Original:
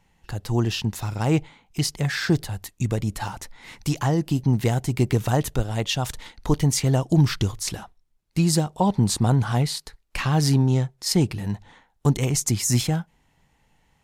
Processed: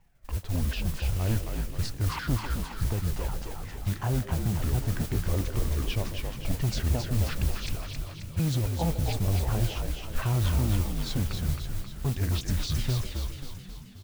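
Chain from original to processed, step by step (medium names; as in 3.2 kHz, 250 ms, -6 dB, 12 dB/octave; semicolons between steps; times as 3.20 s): sawtooth pitch modulation -10 st, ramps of 365 ms; RIAA curve playback; in parallel at -4 dB: overload inside the chain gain 12 dB; on the sum: bass shelf 470 Hz -10.5 dB; modulation noise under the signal 17 dB; on a send: repeats whose band climbs or falls 143 ms, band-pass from 460 Hz, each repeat 1.4 oct, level -9 dB; on the sum: peak limiter -11.5 dBFS, peak gain reduction 8.5 dB; frequency-shifting echo 267 ms, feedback 56%, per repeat -55 Hz, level -4.5 dB; trim -8 dB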